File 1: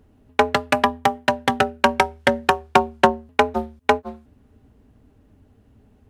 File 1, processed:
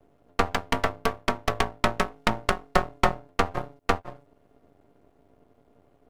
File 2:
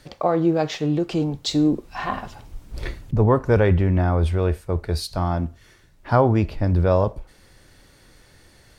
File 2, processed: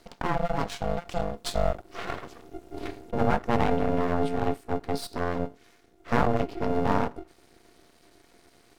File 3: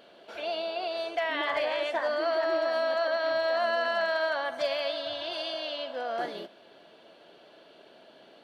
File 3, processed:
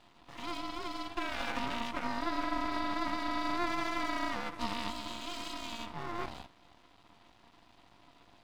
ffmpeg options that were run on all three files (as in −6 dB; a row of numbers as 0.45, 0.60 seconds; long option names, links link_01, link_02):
-af "aeval=exprs='val(0)*sin(2*PI*350*n/s)':channel_layout=same,aeval=exprs='max(val(0),0)':channel_layout=same"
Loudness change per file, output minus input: −7.5, −7.5, −7.0 LU